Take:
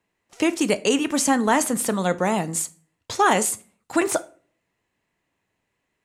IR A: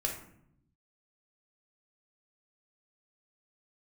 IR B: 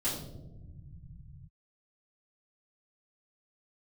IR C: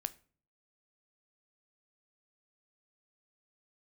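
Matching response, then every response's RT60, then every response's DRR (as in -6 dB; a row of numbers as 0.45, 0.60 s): C; 0.70 s, not exponential, 0.45 s; 0.0, -11.5, 12.5 dB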